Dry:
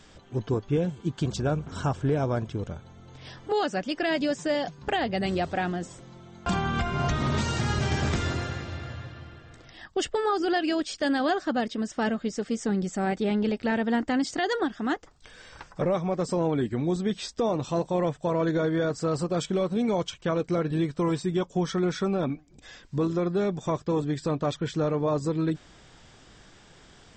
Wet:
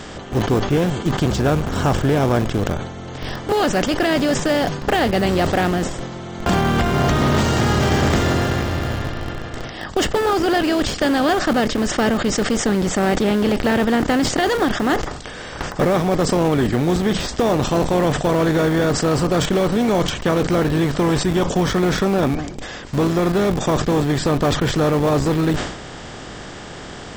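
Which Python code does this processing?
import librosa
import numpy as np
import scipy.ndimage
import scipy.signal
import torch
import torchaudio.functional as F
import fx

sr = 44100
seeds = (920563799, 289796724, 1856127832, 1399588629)

p1 = fx.bin_compress(x, sr, power=0.6)
p2 = fx.schmitt(p1, sr, flips_db=-24.0)
p3 = p1 + F.gain(torch.from_numpy(p2), -6.5).numpy()
p4 = fx.sustainer(p3, sr, db_per_s=68.0)
y = F.gain(torch.from_numpy(p4), 3.0).numpy()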